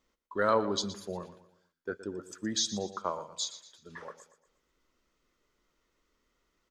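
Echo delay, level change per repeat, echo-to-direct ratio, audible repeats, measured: 118 ms, −8.0 dB, −13.0 dB, 3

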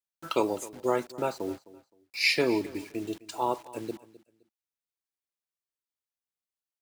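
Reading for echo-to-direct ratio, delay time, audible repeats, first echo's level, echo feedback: −19.0 dB, 259 ms, 2, −19.0 dB, 24%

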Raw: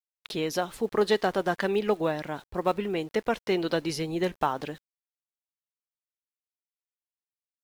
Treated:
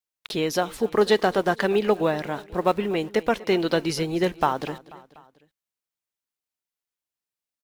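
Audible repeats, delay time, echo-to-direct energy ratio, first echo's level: 3, 244 ms, −18.0 dB, −19.5 dB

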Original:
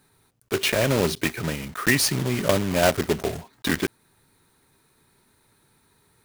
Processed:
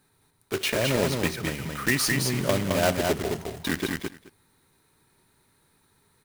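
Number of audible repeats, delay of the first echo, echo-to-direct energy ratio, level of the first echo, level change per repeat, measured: 3, 71 ms, −3.5 dB, −19.0 dB, repeats not evenly spaced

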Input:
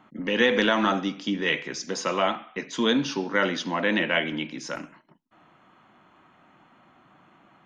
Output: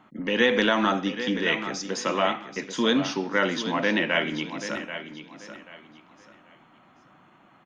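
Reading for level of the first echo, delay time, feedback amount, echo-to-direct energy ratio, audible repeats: −11.0 dB, 785 ms, 27%, −10.5 dB, 3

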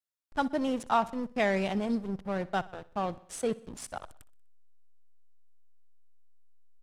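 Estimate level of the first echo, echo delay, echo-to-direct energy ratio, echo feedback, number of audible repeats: −20.0 dB, 62 ms, −18.5 dB, 55%, 3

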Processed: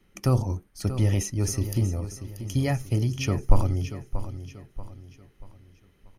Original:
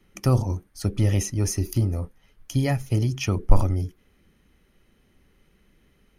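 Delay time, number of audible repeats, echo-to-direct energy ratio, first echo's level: 635 ms, 3, −11.0 dB, −11.5 dB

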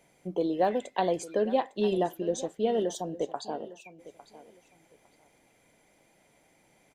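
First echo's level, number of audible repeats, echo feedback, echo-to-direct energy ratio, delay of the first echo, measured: −17.0 dB, 2, 21%, −17.0 dB, 855 ms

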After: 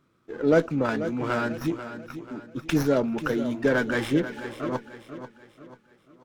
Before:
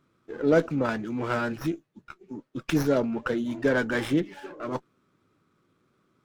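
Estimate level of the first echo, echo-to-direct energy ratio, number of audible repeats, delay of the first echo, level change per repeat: −11.5 dB, −10.5 dB, 4, 489 ms, −7.5 dB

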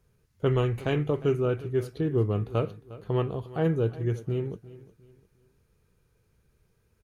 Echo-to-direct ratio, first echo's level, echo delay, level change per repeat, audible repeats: −17.5 dB, −18.0 dB, 356 ms, −9.5 dB, 2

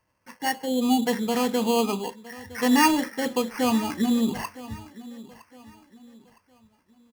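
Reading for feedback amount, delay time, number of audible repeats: 36%, 962 ms, 2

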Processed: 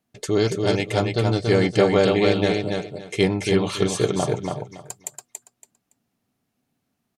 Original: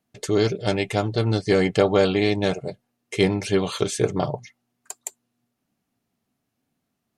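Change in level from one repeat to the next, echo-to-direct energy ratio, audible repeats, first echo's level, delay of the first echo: −13.5 dB, −4.0 dB, 3, −4.0 dB, 282 ms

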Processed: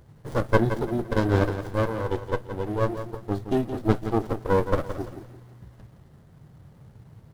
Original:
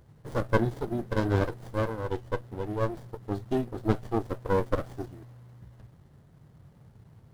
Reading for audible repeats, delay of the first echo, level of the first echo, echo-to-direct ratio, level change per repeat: 3, 170 ms, −10.0 dB, −9.5 dB, −10.0 dB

